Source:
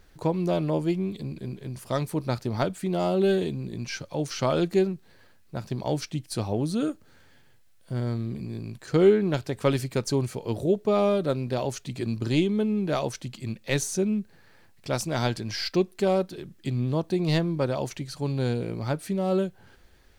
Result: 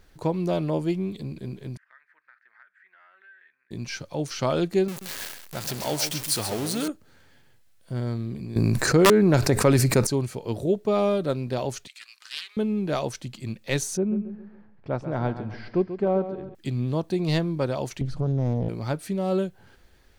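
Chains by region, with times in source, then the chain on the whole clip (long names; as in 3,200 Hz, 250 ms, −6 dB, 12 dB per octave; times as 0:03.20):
0:01.77–0:03.71: flat-topped band-pass 1,700 Hz, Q 3.8 + downward compressor 3 to 1, threshold −52 dBFS
0:04.88–0:06.88: converter with a step at zero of −30.5 dBFS + spectral tilt +2.5 dB per octave + single-tap delay 132 ms −9 dB
0:08.56–0:10.07: parametric band 3,200 Hz −11 dB 0.42 octaves + wrap-around overflow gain 11 dB + envelope flattener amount 70%
0:11.87–0:12.57: high-pass filter 1,400 Hz 24 dB per octave + highs frequency-modulated by the lows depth 0.44 ms
0:13.97–0:16.55: low-pass filter 1,300 Hz + repeating echo 137 ms, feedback 41%, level −11 dB
0:18.01–0:18.69: spectral tilt −4 dB per octave + downward compressor 5 to 1, threshold −20 dBFS + highs frequency-modulated by the lows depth 0.69 ms
whole clip: no processing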